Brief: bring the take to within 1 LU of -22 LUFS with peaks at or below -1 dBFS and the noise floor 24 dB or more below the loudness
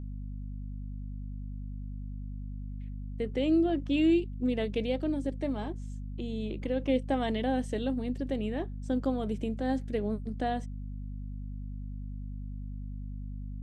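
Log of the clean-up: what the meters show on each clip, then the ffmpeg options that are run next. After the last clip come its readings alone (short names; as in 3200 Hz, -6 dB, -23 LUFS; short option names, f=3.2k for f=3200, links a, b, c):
hum 50 Hz; harmonics up to 250 Hz; hum level -36 dBFS; loudness -33.5 LUFS; peak -17.0 dBFS; loudness target -22.0 LUFS
-> -af "bandreject=f=50:t=h:w=6,bandreject=f=100:t=h:w=6,bandreject=f=150:t=h:w=6,bandreject=f=200:t=h:w=6,bandreject=f=250:t=h:w=6"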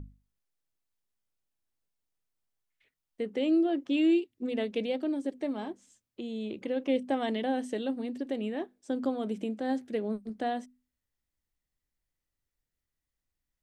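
hum none; loudness -31.5 LUFS; peak -17.5 dBFS; loudness target -22.0 LUFS
-> -af "volume=9.5dB"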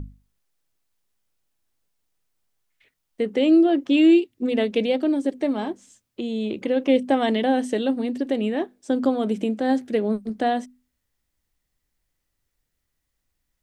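loudness -22.5 LUFS; peak -8.0 dBFS; noise floor -78 dBFS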